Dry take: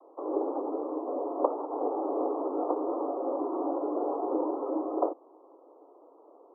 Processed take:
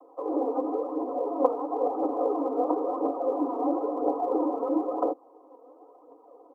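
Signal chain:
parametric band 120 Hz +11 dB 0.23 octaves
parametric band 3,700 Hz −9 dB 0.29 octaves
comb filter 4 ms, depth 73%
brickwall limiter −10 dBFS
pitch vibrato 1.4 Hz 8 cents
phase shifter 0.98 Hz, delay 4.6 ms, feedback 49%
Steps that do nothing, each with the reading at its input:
parametric band 120 Hz: nothing at its input below 230 Hz
parametric band 3,700 Hz: nothing at its input above 1,400 Hz

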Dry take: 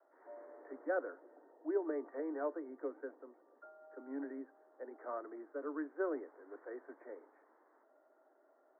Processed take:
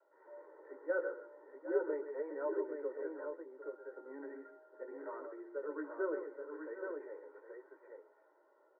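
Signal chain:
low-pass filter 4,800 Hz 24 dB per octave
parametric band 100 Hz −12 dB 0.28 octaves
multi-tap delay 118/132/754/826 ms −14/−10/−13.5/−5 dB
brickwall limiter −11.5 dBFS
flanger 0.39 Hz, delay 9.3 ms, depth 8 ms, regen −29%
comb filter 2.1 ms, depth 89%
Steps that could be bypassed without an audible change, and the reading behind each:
low-pass filter 4,800 Hz: nothing at its input above 1,900 Hz
parametric band 100 Hz: nothing at its input below 230 Hz
brickwall limiter −11.5 dBFS: peak of its input −22.5 dBFS

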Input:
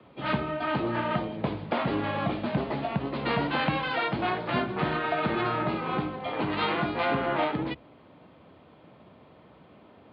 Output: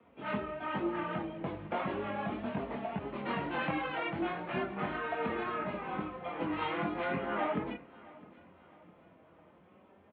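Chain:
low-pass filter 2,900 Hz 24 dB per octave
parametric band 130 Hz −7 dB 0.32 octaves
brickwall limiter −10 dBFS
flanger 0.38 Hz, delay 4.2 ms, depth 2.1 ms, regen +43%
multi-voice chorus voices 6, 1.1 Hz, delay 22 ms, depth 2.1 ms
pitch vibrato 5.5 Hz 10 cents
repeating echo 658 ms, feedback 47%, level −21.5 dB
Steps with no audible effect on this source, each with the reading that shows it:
brickwall limiter −10 dBFS: peak of its input −14.0 dBFS

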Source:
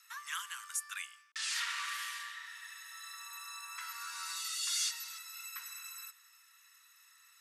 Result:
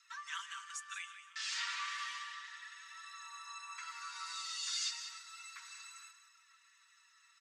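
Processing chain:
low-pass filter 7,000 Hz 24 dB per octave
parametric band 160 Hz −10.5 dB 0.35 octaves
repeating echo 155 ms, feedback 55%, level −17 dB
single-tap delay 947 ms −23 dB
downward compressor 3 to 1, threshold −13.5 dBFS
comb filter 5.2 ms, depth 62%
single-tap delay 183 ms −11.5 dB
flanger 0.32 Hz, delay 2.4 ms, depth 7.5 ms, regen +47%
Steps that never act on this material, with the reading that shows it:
parametric band 160 Hz: nothing at its input below 910 Hz
downward compressor, threshold −13.5 dBFS: peak of its input −24.0 dBFS

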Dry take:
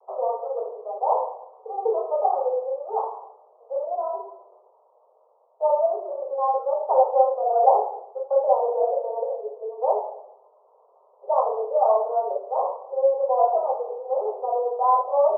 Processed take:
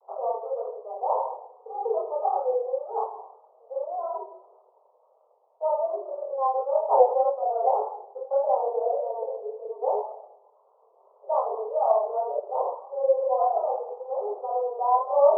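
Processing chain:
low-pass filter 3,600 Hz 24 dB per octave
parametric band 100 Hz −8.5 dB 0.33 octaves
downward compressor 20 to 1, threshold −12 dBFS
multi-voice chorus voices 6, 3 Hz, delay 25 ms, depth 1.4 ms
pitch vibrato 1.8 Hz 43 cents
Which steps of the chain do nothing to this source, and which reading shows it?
low-pass filter 3,600 Hz: nothing at its input above 1,100 Hz
parametric band 100 Hz: nothing at its input below 360 Hz

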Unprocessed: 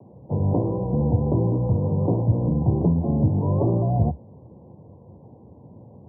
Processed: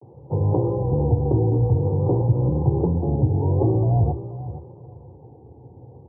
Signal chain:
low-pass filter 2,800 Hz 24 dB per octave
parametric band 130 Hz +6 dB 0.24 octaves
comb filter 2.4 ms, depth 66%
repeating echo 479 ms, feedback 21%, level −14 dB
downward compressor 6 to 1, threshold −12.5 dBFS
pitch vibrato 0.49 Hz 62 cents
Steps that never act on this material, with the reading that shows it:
low-pass filter 2,800 Hz: nothing at its input above 1,000 Hz

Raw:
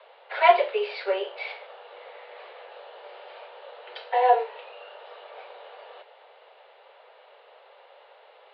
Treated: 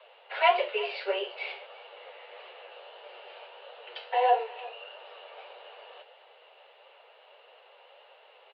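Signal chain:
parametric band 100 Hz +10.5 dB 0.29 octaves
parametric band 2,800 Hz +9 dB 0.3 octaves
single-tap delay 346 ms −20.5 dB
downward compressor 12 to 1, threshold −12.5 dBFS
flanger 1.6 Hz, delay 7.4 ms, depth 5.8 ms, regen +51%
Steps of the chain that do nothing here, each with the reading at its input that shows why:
parametric band 100 Hz: nothing at its input below 380 Hz

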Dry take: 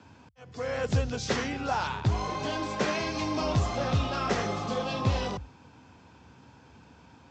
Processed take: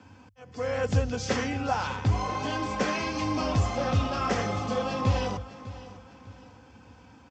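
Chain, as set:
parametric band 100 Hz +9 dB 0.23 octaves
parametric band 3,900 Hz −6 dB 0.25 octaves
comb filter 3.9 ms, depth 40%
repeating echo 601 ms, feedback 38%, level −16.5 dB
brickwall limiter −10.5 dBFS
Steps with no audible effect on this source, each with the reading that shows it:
brickwall limiter −10.5 dBFS: peak of its input −12.5 dBFS

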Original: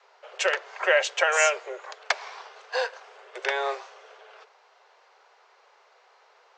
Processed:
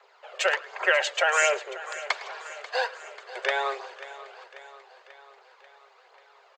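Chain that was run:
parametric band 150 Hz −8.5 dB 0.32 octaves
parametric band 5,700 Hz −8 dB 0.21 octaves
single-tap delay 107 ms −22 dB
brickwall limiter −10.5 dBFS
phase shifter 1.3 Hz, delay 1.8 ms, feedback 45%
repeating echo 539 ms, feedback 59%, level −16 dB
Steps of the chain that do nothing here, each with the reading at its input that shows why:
parametric band 150 Hz: nothing at its input below 340 Hz

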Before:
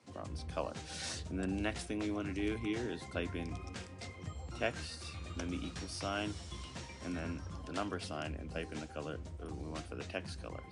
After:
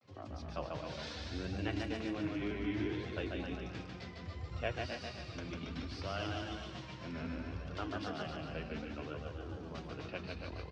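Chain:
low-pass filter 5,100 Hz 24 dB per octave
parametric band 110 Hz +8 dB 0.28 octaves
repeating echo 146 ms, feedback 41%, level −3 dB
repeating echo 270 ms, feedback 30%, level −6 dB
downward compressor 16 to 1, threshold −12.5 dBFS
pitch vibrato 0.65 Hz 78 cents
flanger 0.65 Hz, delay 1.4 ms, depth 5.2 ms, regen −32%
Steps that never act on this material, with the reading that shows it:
downward compressor, threshold −12.5 dBFS: peak of its input −19.5 dBFS

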